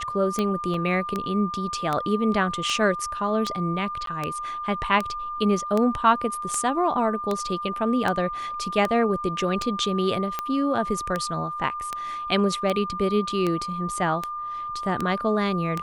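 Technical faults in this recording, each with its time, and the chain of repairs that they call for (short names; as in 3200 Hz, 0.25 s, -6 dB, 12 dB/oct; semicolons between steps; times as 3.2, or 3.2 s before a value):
tick 78 rpm -12 dBFS
tone 1200 Hz -29 dBFS
0.74 gap 2.2 ms
4.06–4.07 gap 13 ms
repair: de-click; notch 1200 Hz, Q 30; interpolate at 0.74, 2.2 ms; interpolate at 4.06, 13 ms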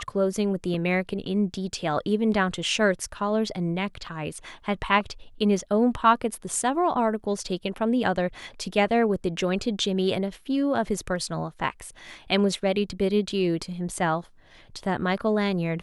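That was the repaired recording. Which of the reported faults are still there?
none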